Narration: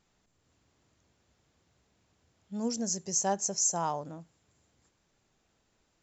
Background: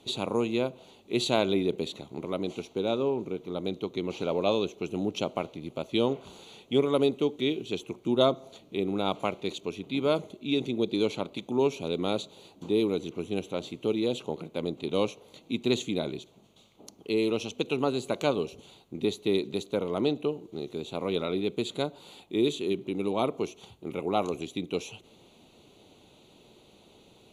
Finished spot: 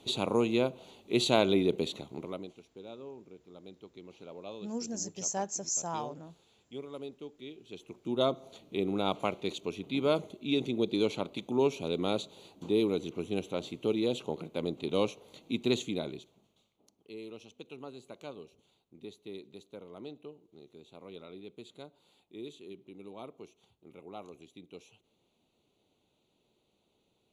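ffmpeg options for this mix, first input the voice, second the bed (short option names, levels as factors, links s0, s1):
-filter_complex "[0:a]adelay=2100,volume=0.596[s0];[1:a]volume=6.31,afade=t=out:st=1.95:d=0.58:silence=0.125893,afade=t=in:st=7.61:d=1.02:silence=0.158489,afade=t=out:st=15.63:d=1.15:silence=0.158489[s1];[s0][s1]amix=inputs=2:normalize=0"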